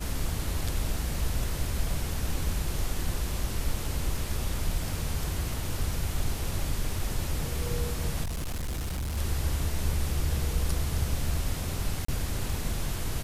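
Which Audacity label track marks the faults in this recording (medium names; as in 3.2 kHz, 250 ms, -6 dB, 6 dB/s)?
8.230000	9.180000	clipped -29 dBFS
12.050000	12.080000	dropout 34 ms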